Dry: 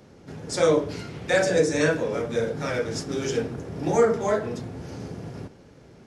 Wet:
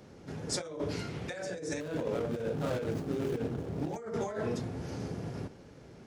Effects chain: 1.80–3.96 s: median filter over 25 samples; compressor with a negative ratio -29 dBFS, ratio -1; trim -6 dB

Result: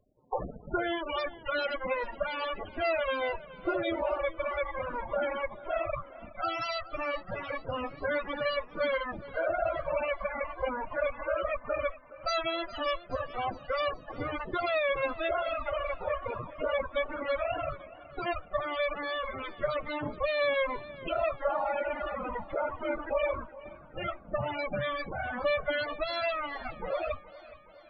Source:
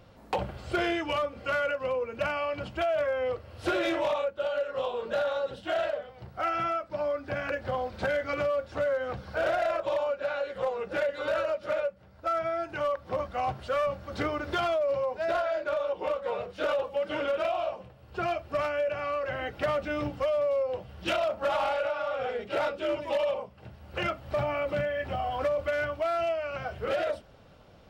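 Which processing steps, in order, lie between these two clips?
Chebyshev shaper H 3 -11 dB, 4 -23 dB, 6 -8 dB, 7 -32 dB, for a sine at -21.5 dBFS; loudest bins only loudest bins 16; modulated delay 418 ms, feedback 59%, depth 57 cents, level -18 dB

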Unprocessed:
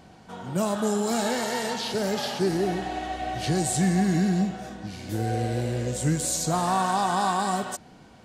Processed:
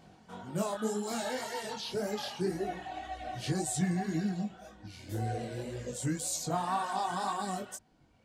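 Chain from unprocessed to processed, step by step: reverb removal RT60 1.7 s; chorus 1.9 Hz, delay 18.5 ms, depth 5.1 ms; trim -3 dB

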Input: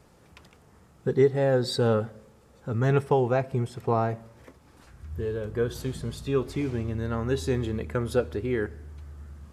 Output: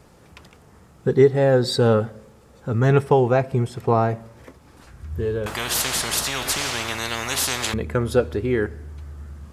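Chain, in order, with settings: 5.46–7.74 s: spectrum-flattening compressor 10:1; trim +6 dB

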